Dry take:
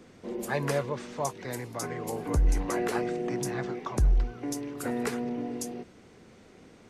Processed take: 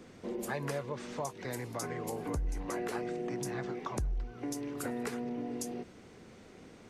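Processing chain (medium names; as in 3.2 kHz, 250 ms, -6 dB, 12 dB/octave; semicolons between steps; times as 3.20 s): compression 3:1, threshold -35 dBFS, peak gain reduction 12 dB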